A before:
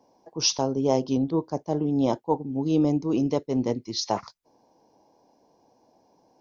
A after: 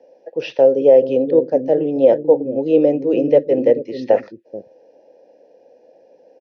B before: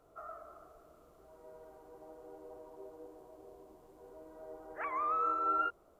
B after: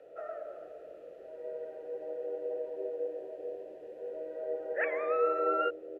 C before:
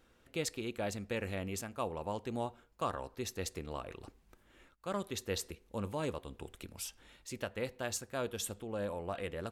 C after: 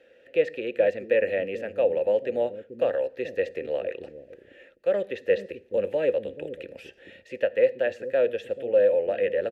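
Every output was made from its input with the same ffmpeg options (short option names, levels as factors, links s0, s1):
-filter_complex "[0:a]acrossover=split=2800[s0][s1];[s1]acompressor=threshold=0.00158:ratio=4:attack=1:release=60[s2];[s0][s2]amix=inputs=2:normalize=0,asplit=3[s3][s4][s5];[s3]bandpass=f=530:t=q:w=8,volume=1[s6];[s4]bandpass=f=1840:t=q:w=8,volume=0.501[s7];[s5]bandpass=f=2480:t=q:w=8,volume=0.355[s8];[s6][s7][s8]amix=inputs=3:normalize=0,acrossover=split=380[s9][s10];[s9]aecho=1:1:101|434:0.168|0.668[s11];[s10]aexciter=amount=1.1:drive=6.7:freq=11000[s12];[s11][s12]amix=inputs=2:normalize=0,alimiter=level_in=14.1:limit=0.891:release=50:level=0:latency=1,volume=0.891"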